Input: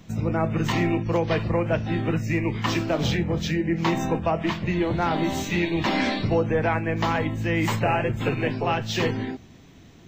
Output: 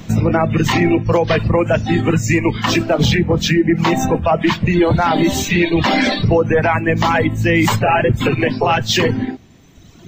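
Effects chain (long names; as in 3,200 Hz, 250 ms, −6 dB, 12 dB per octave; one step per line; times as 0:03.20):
reverb reduction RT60 1.6 s
0:01.58–0:02.51: parametric band 7,100 Hz +11 dB 0.33 octaves
boost into a limiter +18.5 dB
level −4.5 dB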